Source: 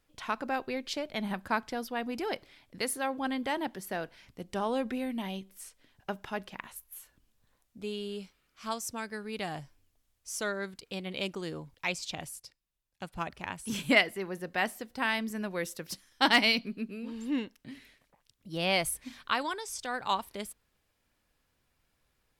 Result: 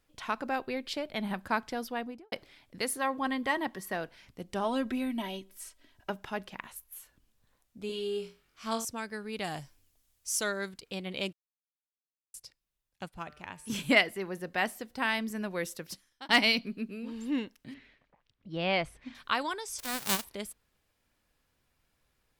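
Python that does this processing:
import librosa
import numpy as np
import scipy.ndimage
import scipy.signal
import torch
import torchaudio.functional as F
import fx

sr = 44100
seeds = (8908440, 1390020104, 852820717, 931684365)

y = fx.peak_eq(x, sr, hz=6300.0, db=-6.0, octaves=0.36, at=(0.61, 1.33))
y = fx.studio_fade_out(y, sr, start_s=1.91, length_s=0.41)
y = fx.small_body(y, sr, hz=(1100.0, 1900.0), ring_ms=45, db=11, at=(2.99, 3.95))
y = fx.comb(y, sr, ms=3.1, depth=0.65, at=(4.64, 6.1))
y = fx.room_flutter(y, sr, wall_m=3.8, rt60_s=0.29, at=(7.87, 8.85))
y = fx.high_shelf(y, sr, hz=3600.0, db=8.0, at=(9.44, 10.69))
y = fx.comb_fb(y, sr, f0_hz=150.0, decay_s=0.9, harmonics='all', damping=0.0, mix_pct=50, at=(13.08, 13.7))
y = fx.lowpass(y, sr, hz=3000.0, slope=12, at=(17.74, 19.15))
y = fx.envelope_flatten(y, sr, power=0.1, at=(19.78, 20.23), fade=0.02)
y = fx.edit(y, sr, fx.silence(start_s=11.33, length_s=1.01),
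    fx.fade_out_span(start_s=15.76, length_s=0.53), tone=tone)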